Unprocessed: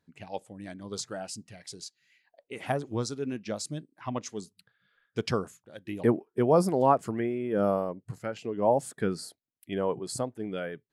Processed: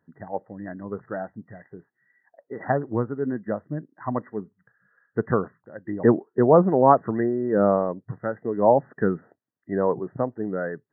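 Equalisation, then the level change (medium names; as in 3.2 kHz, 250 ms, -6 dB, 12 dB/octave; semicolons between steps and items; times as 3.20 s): high-pass 98 Hz; brick-wall FIR low-pass 2 kHz; +6.5 dB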